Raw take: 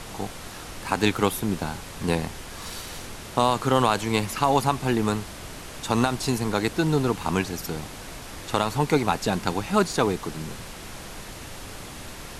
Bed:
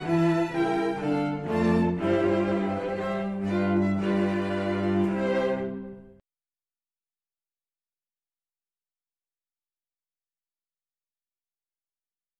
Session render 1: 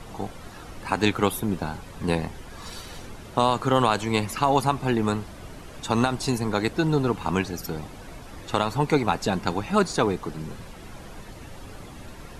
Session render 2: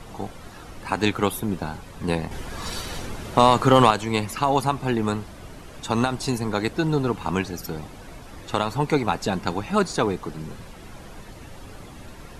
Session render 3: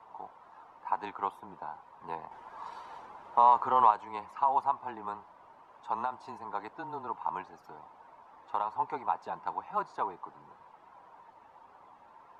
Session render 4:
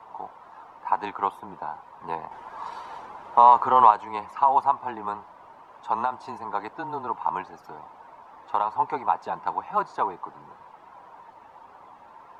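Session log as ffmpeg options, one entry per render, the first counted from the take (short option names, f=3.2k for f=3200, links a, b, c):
-af "afftdn=nr=10:nf=-40"
-filter_complex "[0:a]asettb=1/sr,asplit=3[a][b][c];[a]atrim=end=2.314[d];[b]atrim=start=2.31:end=3.91,asetpts=PTS-STARTPTS,afade=t=in:d=0.004:c=qsin,afade=t=out:st=1.596:d=0.004:c=qsin,acontrast=81[e];[c]atrim=start=3.906[f];[d][e]acrossfade=d=0.004:c1=hsin:c2=qsin[g];[g][f]acrossfade=d=0.004:c1=qsin:c2=hsin"
-af "bandpass=f=960:t=q:w=5.5:csg=0,afreqshift=-18"
-af "volume=7.5dB"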